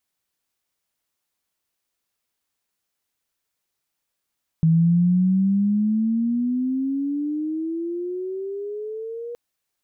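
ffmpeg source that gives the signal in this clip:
-f lavfi -i "aevalsrc='pow(10,(-13-16.5*t/4.72)/20)*sin(2*PI*160*4.72/log(480/160)*(exp(log(480/160)*t/4.72)-1))':d=4.72:s=44100"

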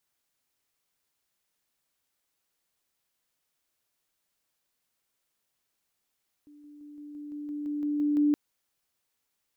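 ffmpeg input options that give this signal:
-f lavfi -i "aevalsrc='pow(10,(-50+3*floor(t/0.17))/20)*sin(2*PI*294*t)':d=1.87:s=44100"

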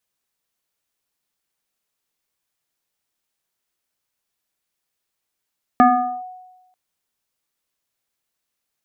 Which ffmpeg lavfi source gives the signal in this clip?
-f lavfi -i "aevalsrc='0.473*pow(10,-3*t/1.08)*sin(2*PI*737*t+1.2*clip(1-t/0.43,0,1)*sin(2*PI*0.66*737*t))':d=0.94:s=44100"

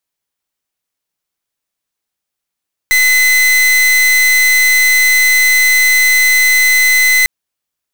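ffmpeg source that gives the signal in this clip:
-f lavfi -i "aevalsrc='0.335*(2*lt(mod(2030*t,1),0.41)-1)':d=4.35:s=44100"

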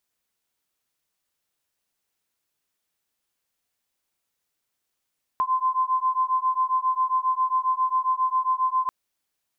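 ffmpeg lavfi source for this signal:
-f lavfi -i "aevalsrc='0.0668*(sin(2*PI*1030*t)+sin(2*PI*1037.4*t))':d=3.49:s=44100"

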